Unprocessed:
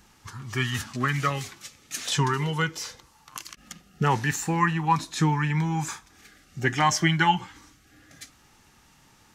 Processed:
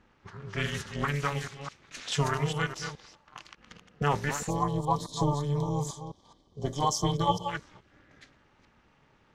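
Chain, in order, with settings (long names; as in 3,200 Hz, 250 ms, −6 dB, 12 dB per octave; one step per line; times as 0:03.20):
delay that plays each chunk backwards 211 ms, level −8 dB
low-pass that shuts in the quiet parts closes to 2,500 Hz, open at −21 dBFS
amplitude modulation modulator 290 Hz, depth 90%
gain on a spectral selection 0:04.50–0:07.48, 1,200–3,000 Hz −22 dB
level −1 dB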